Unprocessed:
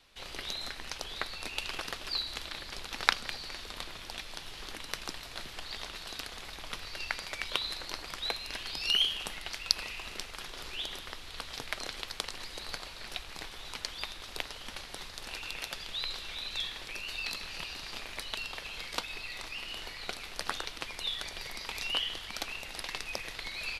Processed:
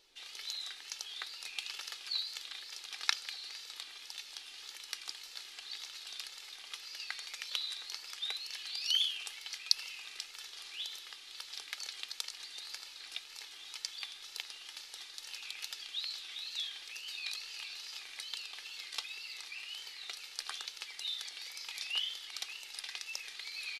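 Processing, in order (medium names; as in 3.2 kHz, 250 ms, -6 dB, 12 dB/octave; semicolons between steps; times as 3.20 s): differentiator; added noise brown -66 dBFS; three-band isolator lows -24 dB, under 240 Hz, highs -13 dB, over 6.9 kHz; comb 2.4 ms, depth 45%; wow and flutter 100 cents; trim +3 dB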